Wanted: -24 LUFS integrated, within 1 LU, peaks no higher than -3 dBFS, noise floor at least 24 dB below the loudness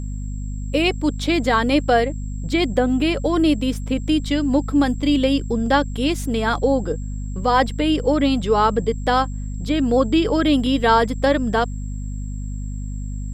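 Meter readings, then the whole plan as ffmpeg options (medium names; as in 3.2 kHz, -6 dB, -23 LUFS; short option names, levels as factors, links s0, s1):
hum 50 Hz; highest harmonic 250 Hz; hum level -25 dBFS; steady tone 7.6 kHz; tone level -47 dBFS; loudness -19.5 LUFS; peak level -3.0 dBFS; loudness target -24.0 LUFS
-> -af "bandreject=f=50:t=h:w=6,bandreject=f=100:t=h:w=6,bandreject=f=150:t=h:w=6,bandreject=f=200:t=h:w=6,bandreject=f=250:t=h:w=6"
-af "bandreject=f=7600:w=30"
-af "volume=0.596"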